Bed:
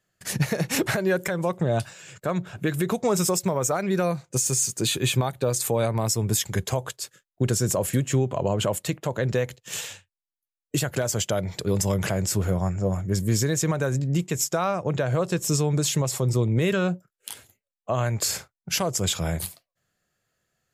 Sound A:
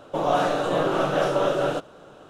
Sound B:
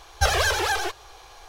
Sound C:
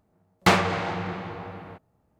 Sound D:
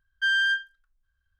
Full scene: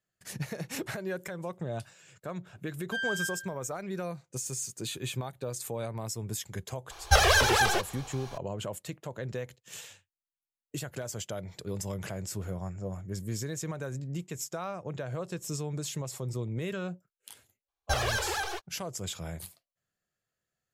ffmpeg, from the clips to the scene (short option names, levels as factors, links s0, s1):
-filter_complex "[2:a]asplit=2[s0][s1];[0:a]volume=0.251[s2];[4:a]asplit=2[s3][s4];[s4]adelay=97,lowpass=f=2000:p=1,volume=0.668,asplit=2[s5][s6];[s6]adelay=97,lowpass=f=2000:p=1,volume=0.46,asplit=2[s7][s8];[s8]adelay=97,lowpass=f=2000:p=1,volume=0.46,asplit=2[s9][s10];[s10]adelay=97,lowpass=f=2000:p=1,volume=0.46,asplit=2[s11][s12];[s12]adelay=97,lowpass=f=2000:p=1,volume=0.46,asplit=2[s13][s14];[s14]adelay=97,lowpass=f=2000:p=1,volume=0.46[s15];[s3][s5][s7][s9][s11][s13][s15]amix=inputs=7:normalize=0[s16];[s1]agate=range=0.0141:threshold=0.0178:ratio=16:release=100:detection=peak[s17];[s16]atrim=end=1.39,asetpts=PTS-STARTPTS,volume=0.299,afade=t=in:d=0.004:c=hsin,afade=t=out:st=1.386:d=0.004:c=hsin,adelay=2700[s18];[s0]atrim=end=1.48,asetpts=PTS-STARTPTS,afade=t=in:d=0.004:c=hsin,afade=t=out:st=1.476:d=0.004:c=hsin,adelay=304290S[s19];[s17]atrim=end=1.48,asetpts=PTS-STARTPTS,volume=0.376,afade=t=in:d=0.004:c=hsin,afade=t=out:st=1.476:d=0.004:c=hsin,adelay=17680[s20];[s2][s18][s19][s20]amix=inputs=4:normalize=0"